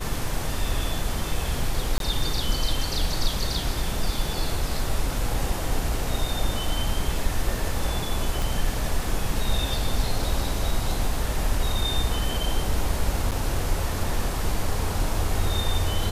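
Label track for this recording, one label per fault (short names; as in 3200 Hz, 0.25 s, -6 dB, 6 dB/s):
1.980000	2.000000	gap 22 ms
8.420000	8.420000	pop
13.310000	13.320000	gap 7.2 ms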